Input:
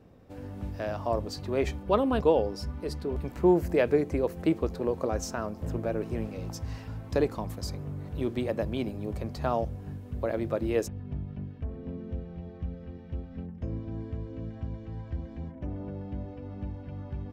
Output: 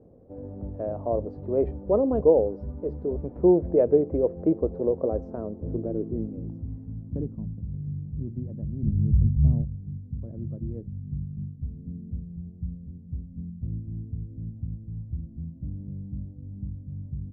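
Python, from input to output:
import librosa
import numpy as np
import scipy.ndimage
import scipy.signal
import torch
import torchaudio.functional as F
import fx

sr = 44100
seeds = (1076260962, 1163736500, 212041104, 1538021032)

y = fx.riaa(x, sr, side='playback', at=(8.83, 9.62))
y = fx.filter_sweep_lowpass(y, sr, from_hz=530.0, to_hz=160.0, start_s=5.1, end_s=7.71, q=1.8)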